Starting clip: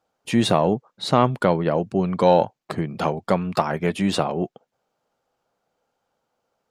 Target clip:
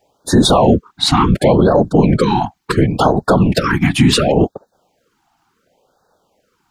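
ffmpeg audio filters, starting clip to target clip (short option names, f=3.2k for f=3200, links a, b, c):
-af "afftfilt=real='hypot(re,im)*cos(2*PI*random(0))':imag='hypot(re,im)*sin(2*PI*random(1))':win_size=512:overlap=0.75,alimiter=level_in=21.5dB:limit=-1dB:release=50:level=0:latency=1,afftfilt=real='re*(1-between(b*sr/1024,460*pow(2600/460,0.5+0.5*sin(2*PI*0.7*pts/sr))/1.41,460*pow(2600/460,0.5+0.5*sin(2*PI*0.7*pts/sr))*1.41))':imag='im*(1-between(b*sr/1024,460*pow(2600/460,0.5+0.5*sin(2*PI*0.7*pts/sr))/1.41,460*pow(2600/460,0.5+0.5*sin(2*PI*0.7*pts/sr))*1.41))':win_size=1024:overlap=0.75,volume=-1dB"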